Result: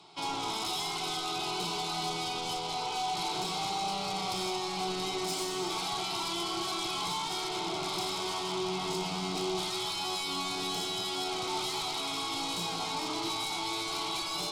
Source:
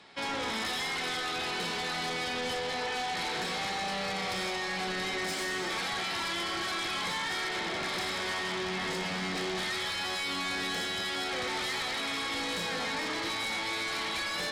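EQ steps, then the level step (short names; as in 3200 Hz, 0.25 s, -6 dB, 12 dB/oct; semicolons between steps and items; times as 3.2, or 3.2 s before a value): fixed phaser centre 350 Hz, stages 8; +3.0 dB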